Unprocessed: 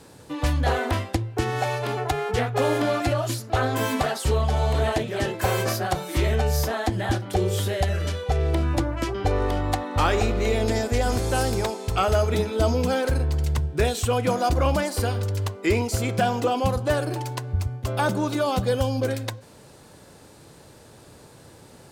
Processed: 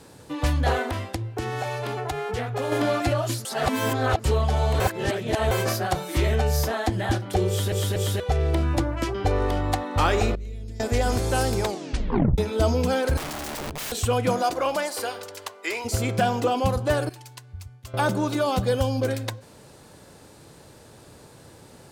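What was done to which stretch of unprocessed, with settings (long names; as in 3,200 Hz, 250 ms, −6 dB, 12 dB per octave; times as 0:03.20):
0:00.82–0:02.72: downward compressor 2.5 to 1, threshold −26 dBFS
0:03.45–0:04.24: reverse
0:04.80–0:05.51: reverse
0:07.48: stutter in place 0.24 s, 3 plays
0:10.35–0:10.80: guitar amp tone stack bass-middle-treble 10-0-1
0:11.65: tape stop 0.73 s
0:13.17–0:13.92: wrap-around overflow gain 27.5 dB
0:14.42–0:15.84: high-pass filter 330 Hz → 790 Hz
0:17.09–0:17.94: guitar amp tone stack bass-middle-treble 5-5-5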